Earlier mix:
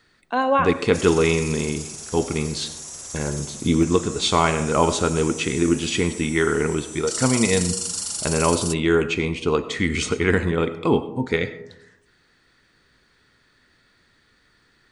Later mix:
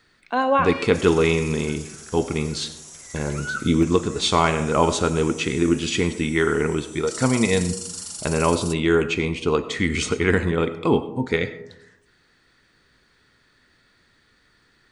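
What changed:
first sound: unmuted
second sound −6.0 dB

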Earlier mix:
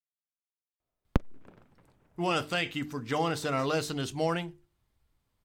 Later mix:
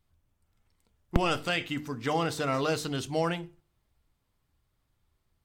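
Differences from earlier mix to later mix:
speech: entry −1.05 s
reverb: on, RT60 0.40 s

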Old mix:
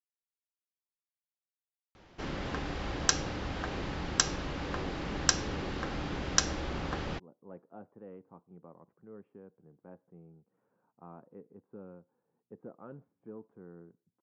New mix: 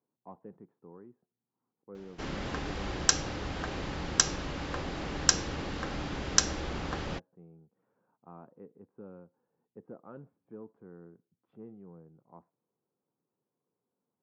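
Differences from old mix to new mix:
speech: entry −2.75 s
master: remove high-frequency loss of the air 51 metres

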